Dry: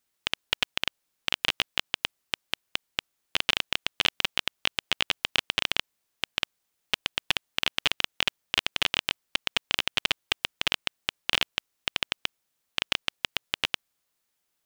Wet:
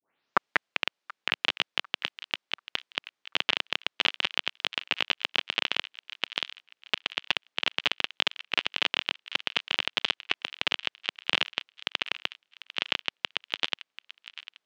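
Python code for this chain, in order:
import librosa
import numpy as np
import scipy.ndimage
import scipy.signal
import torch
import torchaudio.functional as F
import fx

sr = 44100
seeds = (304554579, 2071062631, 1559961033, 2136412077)

y = fx.tape_start_head(x, sr, length_s=0.91)
y = fx.bandpass_edges(y, sr, low_hz=200.0, high_hz=4200.0)
y = fx.echo_wet_highpass(y, sr, ms=739, feedback_pct=36, hz=1400.0, wet_db=-14.0)
y = fx.record_warp(y, sr, rpm=33.33, depth_cents=100.0)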